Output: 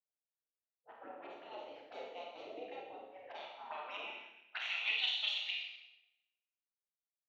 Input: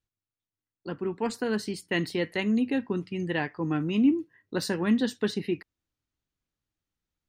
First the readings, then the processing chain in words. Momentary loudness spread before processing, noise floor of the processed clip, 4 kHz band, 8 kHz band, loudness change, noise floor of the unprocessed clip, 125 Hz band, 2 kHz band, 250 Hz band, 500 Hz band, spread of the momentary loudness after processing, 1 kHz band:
9 LU, under -85 dBFS, +1.0 dB, under -20 dB, -11.0 dB, under -85 dBFS, under -40 dB, -6.5 dB, -35.5 dB, -18.0 dB, 18 LU, -8.5 dB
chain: tracing distortion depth 0.18 ms; spectral gate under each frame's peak -20 dB weak; level-controlled noise filter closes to 560 Hz, open at -40 dBFS; resonant low shelf 570 Hz -9 dB, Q 1.5; touch-sensitive flanger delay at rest 6.4 ms, full sweep at -42 dBFS; cabinet simulation 170–4600 Hz, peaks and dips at 340 Hz +6 dB, 1.1 kHz -10 dB, 1.7 kHz +5 dB; Schroeder reverb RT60 1 s, combs from 28 ms, DRR -1.5 dB; band-pass sweep 470 Hz -> 3.5 kHz, 3.08–5.21 s; tape noise reduction on one side only decoder only; trim +10.5 dB

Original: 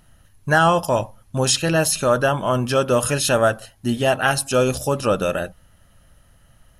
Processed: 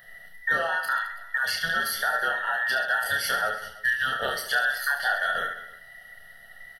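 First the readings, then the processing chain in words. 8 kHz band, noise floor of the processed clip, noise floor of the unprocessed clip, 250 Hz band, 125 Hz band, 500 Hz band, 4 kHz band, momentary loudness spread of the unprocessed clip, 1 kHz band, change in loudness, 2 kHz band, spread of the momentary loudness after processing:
-13.5 dB, -49 dBFS, -55 dBFS, -25.5 dB, -26.5 dB, -16.5 dB, -5.0 dB, 8 LU, -6.5 dB, -6.0 dB, +2.0 dB, 8 LU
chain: every band turned upside down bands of 2 kHz; compression 12:1, threshold -27 dBFS, peak gain reduction 17 dB; static phaser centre 1.6 kHz, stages 8; reverse bouncing-ball echo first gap 30 ms, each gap 1.4×, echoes 5; trim +4.5 dB

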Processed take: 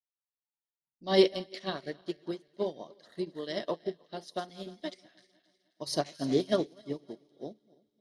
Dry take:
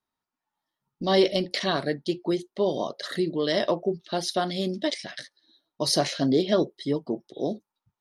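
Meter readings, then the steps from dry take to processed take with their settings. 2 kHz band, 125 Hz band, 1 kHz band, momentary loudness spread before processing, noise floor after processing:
-9.5 dB, -9.0 dB, -8.5 dB, 10 LU, under -85 dBFS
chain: backward echo that repeats 155 ms, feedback 66%, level -12 dB; feedback echo behind a high-pass 264 ms, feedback 49%, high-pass 1.9 kHz, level -14.5 dB; upward expansion 2.5:1, over -33 dBFS

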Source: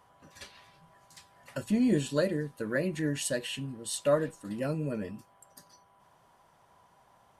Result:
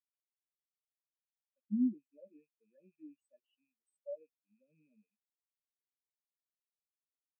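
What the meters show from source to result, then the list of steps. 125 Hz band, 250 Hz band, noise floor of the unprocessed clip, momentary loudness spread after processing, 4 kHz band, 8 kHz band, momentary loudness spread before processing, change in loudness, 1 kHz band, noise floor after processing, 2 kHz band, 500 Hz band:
under -20 dB, -8.5 dB, -64 dBFS, 23 LU, under -40 dB, under -40 dB, 20 LU, -6.0 dB, under -40 dB, under -85 dBFS, under -40 dB, -22.0 dB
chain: rattle on loud lows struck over -41 dBFS, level -24 dBFS; high-pass 170 Hz 24 dB/octave; treble shelf 3.4 kHz +8 dB; peak limiter -23.5 dBFS, peak gain reduction 10 dB; spectral contrast expander 4:1

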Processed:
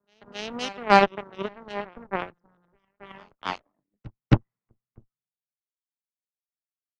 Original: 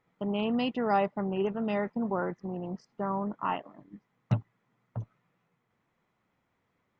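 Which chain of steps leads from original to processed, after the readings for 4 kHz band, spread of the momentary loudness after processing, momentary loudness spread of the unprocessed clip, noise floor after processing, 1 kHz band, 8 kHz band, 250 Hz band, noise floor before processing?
+8.0 dB, 18 LU, 14 LU, under -85 dBFS, +6.5 dB, no reading, -1.0 dB, -77 dBFS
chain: Chebyshev shaper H 4 -7 dB, 6 -11 dB, 7 -16 dB, 8 -44 dB, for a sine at -13 dBFS; in parallel at -11 dB: crossover distortion -52.5 dBFS; on the sum: pre-echo 269 ms -17 dB; three bands expanded up and down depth 70%

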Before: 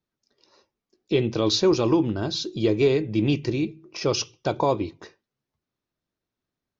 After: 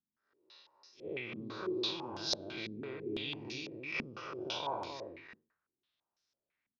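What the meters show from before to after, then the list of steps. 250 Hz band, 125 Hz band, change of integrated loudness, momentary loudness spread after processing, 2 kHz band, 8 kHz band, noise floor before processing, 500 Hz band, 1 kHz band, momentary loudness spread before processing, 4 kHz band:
-19.0 dB, -23.0 dB, -15.5 dB, 12 LU, -6.5 dB, no reading, under -85 dBFS, -18.5 dB, -11.5 dB, 9 LU, -9.5 dB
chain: spectral blur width 151 ms; compression 5:1, threshold -32 dBFS, peak gain reduction 12 dB; tilt shelf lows -9.5 dB, about 800 Hz; on a send: delay 269 ms -4 dB; on the sum: step-sequenced low-pass 6 Hz 230–5500 Hz; trim -6 dB

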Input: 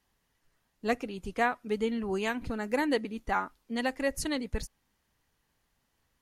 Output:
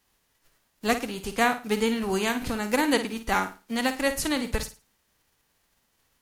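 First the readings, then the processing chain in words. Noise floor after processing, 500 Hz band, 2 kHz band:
-72 dBFS, +4.0 dB, +6.0 dB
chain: formants flattened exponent 0.6; flutter echo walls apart 9.1 m, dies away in 0.31 s; trim +4.5 dB

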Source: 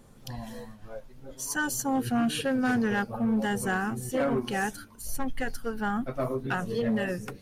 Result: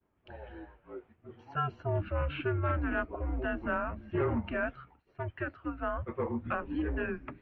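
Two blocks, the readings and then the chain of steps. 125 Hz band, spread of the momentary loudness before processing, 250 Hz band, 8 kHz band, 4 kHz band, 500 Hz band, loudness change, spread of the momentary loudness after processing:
+1.0 dB, 16 LU, -9.0 dB, under -40 dB, -13.0 dB, -3.5 dB, -5.0 dB, 17 LU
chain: mistuned SSB -160 Hz 250–2800 Hz; expander -51 dBFS; trim -2.5 dB

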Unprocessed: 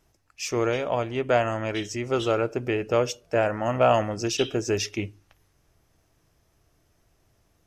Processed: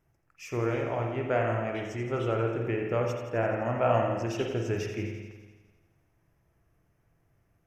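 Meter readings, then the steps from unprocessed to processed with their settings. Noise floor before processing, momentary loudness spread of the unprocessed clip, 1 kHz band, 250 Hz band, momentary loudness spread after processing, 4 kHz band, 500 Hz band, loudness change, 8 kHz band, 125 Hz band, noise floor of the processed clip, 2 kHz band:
-67 dBFS, 8 LU, -5.0 dB, -3.5 dB, 9 LU, -12.5 dB, -4.5 dB, -4.5 dB, -14.5 dB, +0.5 dB, -71 dBFS, -4.5 dB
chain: ten-band graphic EQ 125 Hz +7 dB, 2 kHz +4 dB, 4 kHz -11 dB, 8 kHz -6 dB; feedback echo behind a high-pass 85 ms, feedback 69%, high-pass 3.9 kHz, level -9 dB; spring tank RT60 1.3 s, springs 44/50 ms, chirp 70 ms, DRR 1.5 dB; trim -7.5 dB

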